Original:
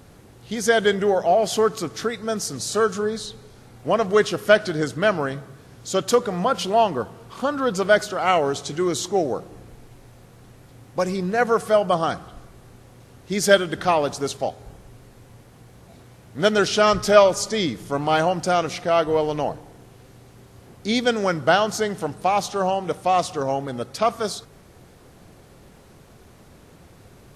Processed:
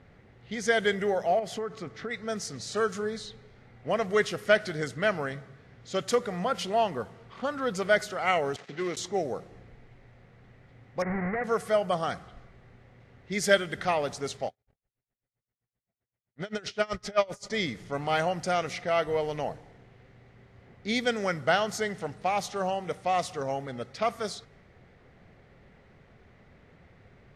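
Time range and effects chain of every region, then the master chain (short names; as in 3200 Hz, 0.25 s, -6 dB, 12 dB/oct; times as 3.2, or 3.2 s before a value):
1.39–2.11 high shelf 2800 Hz -9 dB + compressor 5:1, threshold -22 dBFS
8.56–8.97 switching dead time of 0.15 ms + BPF 170–5500 Hz
11.02–11.44 half-waves squared off + elliptic low-pass 2100 Hz + compressor 12:1, threshold -20 dBFS
14.47–17.5 gate -39 dBFS, range -30 dB + dB-linear tremolo 7.7 Hz, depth 27 dB
whole clip: low-pass opened by the level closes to 2800 Hz, open at -18 dBFS; thirty-one-band EQ 315 Hz -6 dB, 1000 Hz -4 dB, 2000 Hz +9 dB; gain -7 dB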